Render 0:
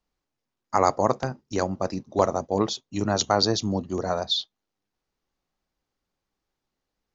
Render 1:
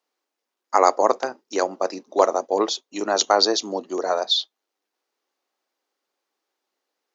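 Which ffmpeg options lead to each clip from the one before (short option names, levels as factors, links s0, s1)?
-af "highpass=f=330:w=0.5412,highpass=f=330:w=1.3066,volume=1.68"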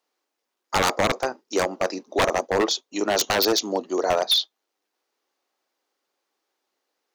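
-af "aeval=exprs='0.178*(abs(mod(val(0)/0.178+3,4)-2)-1)':c=same,volume=1.26"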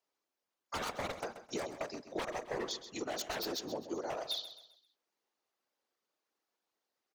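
-filter_complex "[0:a]acompressor=threshold=0.0501:ratio=6,afftfilt=real='hypot(re,im)*cos(2*PI*random(0))':imag='hypot(re,im)*sin(2*PI*random(1))':win_size=512:overlap=0.75,asplit=2[s0][s1];[s1]aecho=0:1:131|262|393|524:0.251|0.0955|0.0363|0.0138[s2];[s0][s2]amix=inputs=2:normalize=0,volume=0.668"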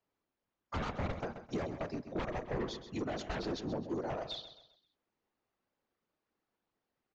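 -af "bass=f=250:g=15,treble=f=4000:g=-13,aresample=16000,asoftclip=type=tanh:threshold=0.0316,aresample=44100,volume=1.12"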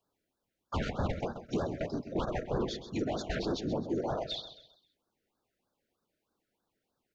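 -af "afftfilt=real='re*(1-between(b*sr/1024,910*pow(2500/910,0.5+0.5*sin(2*PI*3.2*pts/sr))/1.41,910*pow(2500/910,0.5+0.5*sin(2*PI*3.2*pts/sr))*1.41))':imag='im*(1-between(b*sr/1024,910*pow(2500/910,0.5+0.5*sin(2*PI*3.2*pts/sr))/1.41,910*pow(2500/910,0.5+0.5*sin(2*PI*3.2*pts/sr))*1.41))':win_size=1024:overlap=0.75,volume=1.68"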